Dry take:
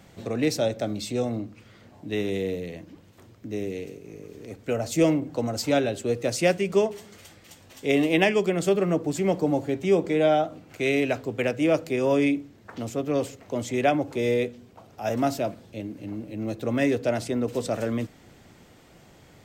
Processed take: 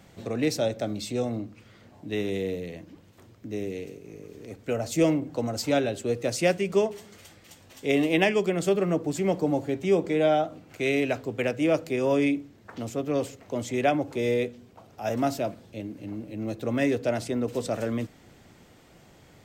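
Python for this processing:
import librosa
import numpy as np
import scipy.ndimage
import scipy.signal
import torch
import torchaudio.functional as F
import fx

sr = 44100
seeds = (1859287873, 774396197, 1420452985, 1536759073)

y = x * 10.0 ** (-1.5 / 20.0)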